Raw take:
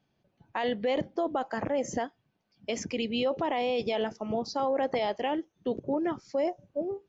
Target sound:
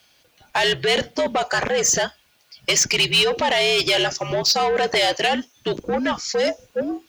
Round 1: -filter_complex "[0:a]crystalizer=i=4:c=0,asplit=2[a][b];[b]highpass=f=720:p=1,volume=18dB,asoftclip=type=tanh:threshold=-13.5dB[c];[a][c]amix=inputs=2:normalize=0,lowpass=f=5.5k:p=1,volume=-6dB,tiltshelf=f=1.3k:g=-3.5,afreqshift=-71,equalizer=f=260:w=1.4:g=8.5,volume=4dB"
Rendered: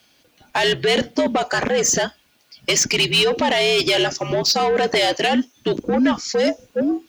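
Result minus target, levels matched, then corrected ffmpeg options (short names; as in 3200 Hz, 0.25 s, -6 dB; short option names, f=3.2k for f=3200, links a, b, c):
250 Hz band +6.0 dB
-filter_complex "[0:a]crystalizer=i=4:c=0,asplit=2[a][b];[b]highpass=f=720:p=1,volume=18dB,asoftclip=type=tanh:threshold=-13.5dB[c];[a][c]amix=inputs=2:normalize=0,lowpass=f=5.5k:p=1,volume=-6dB,tiltshelf=f=1.3k:g=-3.5,afreqshift=-71,volume=4dB"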